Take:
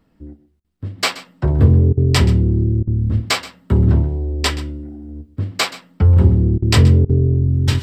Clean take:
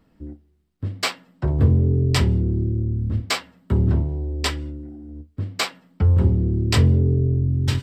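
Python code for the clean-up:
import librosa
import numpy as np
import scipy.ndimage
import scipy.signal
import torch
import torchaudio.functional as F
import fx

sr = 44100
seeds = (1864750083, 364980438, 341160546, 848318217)

y = fx.fix_interpolate(x, sr, at_s=(0.6, 1.93, 2.83, 6.58, 7.05), length_ms=42.0)
y = fx.fix_echo_inverse(y, sr, delay_ms=127, level_db=-17.0)
y = fx.gain(y, sr, db=fx.steps((0.0, 0.0), (0.98, -5.0)))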